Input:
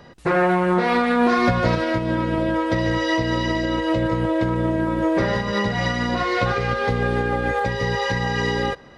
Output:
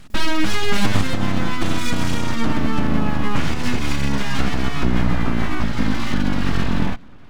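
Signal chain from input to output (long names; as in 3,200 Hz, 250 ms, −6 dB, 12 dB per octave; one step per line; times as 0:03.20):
gliding playback speed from 181% → 65%
full-wave rectification
low shelf with overshoot 320 Hz +9.5 dB, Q 1.5
level −1 dB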